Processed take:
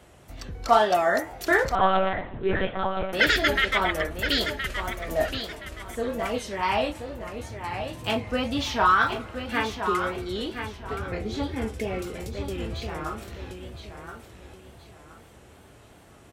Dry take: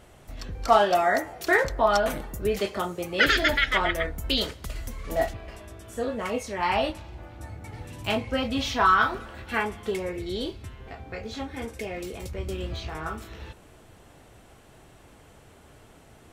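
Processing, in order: 10.84–12.02 low shelf 440 Hz +8 dB; on a send: feedback echo 1.022 s, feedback 30%, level -8 dB; on the sum: wow and flutter 85 cents; HPF 43 Hz; 1.75–3.13 monotone LPC vocoder at 8 kHz 190 Hz

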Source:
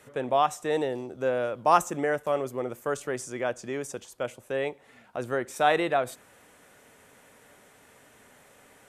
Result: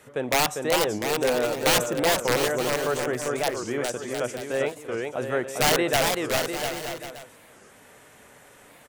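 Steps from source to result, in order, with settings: wrapped overs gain 17 dB; bouncing-ball echo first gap 0.4 s, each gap 0.75×, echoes 5; record warp 45 rpm, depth 250 cents; gain +2.5 dB

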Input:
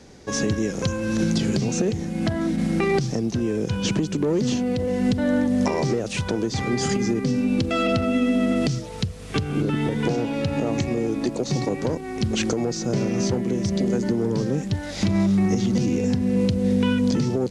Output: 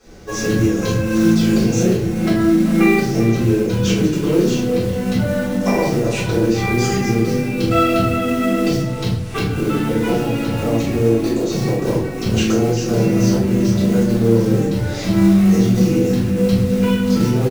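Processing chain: in parallel at -2.5 dB: pump 92 bpm, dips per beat 2, -17 dB, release 0.135 s; on the sum: notches 50/100/150/200/250/300/350/400 Hz; short-mantissa float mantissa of 2-bit; speakerphone echo 0.39 s, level -10 dB; shoebox room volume 79 m³, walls mixed, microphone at 3.9 m; gain -13.5 dB

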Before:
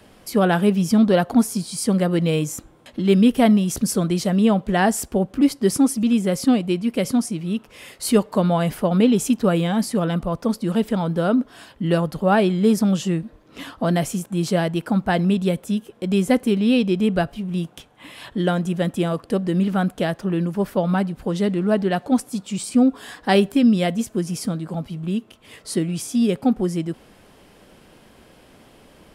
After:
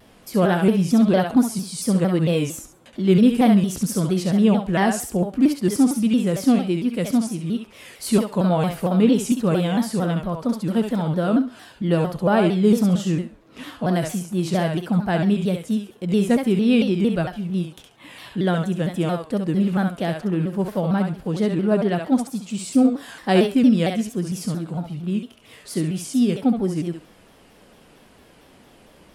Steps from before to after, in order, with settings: harmonic-percussive split percussive -5 dB; thinning echo 68 ms, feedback 26%, high-pass 470 Hz, level -4 dB; shaped vibrato saw down 4.4 Hz, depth 160 cents

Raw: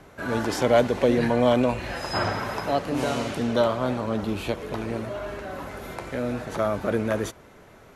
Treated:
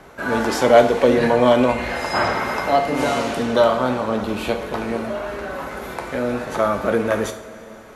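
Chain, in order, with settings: bell 1100 Hz +3 dB 1.7 oct; two-slope reverb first 0.49 s, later 3.5 s, from -16 dB, DRR 5.5 dB; 1.67–3.19 whine 2100 Hz -37 dBFS; bell 100 Hz -10 dB 0.77 oct; gain +4 dB

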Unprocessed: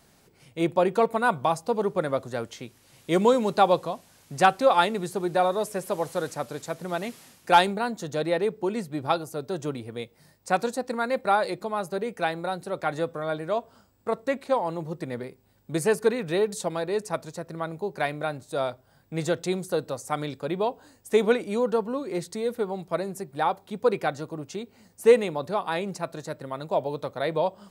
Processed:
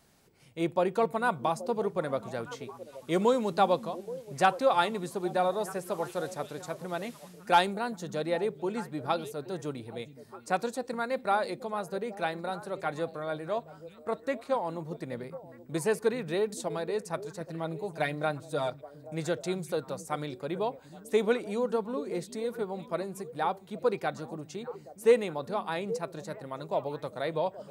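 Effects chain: 17.4–18.7 comb 6.5 ms, depth 76%; delay with a stepping band-pass 0.413 s, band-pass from 180 Hz, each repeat 1.4 oct, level -10 dB; gain -5 dB

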